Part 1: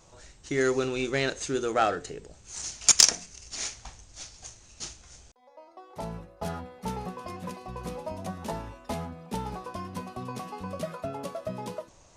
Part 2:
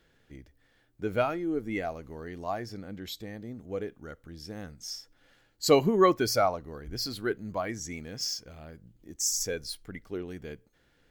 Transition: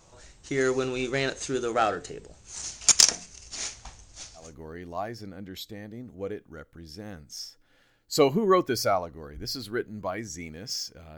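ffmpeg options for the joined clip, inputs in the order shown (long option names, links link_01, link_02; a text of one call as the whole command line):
ffmpeg -i cue0.wav -i cue1.wav -filter_complex "[0:a]apad=whole_dur=11.17,atrim=end=11.17,atrim=end=4.56,asetpts=PTS-STARTPTS[link_01];[1:a]atrim=start=1.85:end=8.68,asetpts=PTS-STARTPTS[link_02];[link_01][link_02]acrossfade=duration=0.22:curve1=tri:curve2=tri" out.wav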